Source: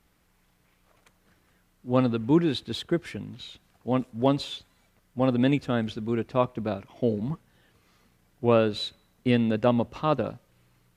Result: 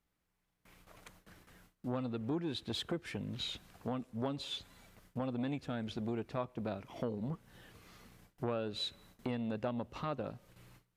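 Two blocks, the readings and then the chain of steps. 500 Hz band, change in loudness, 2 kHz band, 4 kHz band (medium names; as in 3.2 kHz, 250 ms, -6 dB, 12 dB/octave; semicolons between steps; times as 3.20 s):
-14.0 dB, -13.0 dB, -12.0 dB, -6.0 dB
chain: gate with hold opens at -54 dBFS; compression 5:1, threshold -39 dBFS, peak gain reduction 21 dB; transformer saturation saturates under 550 Hz; trim +4.5 dB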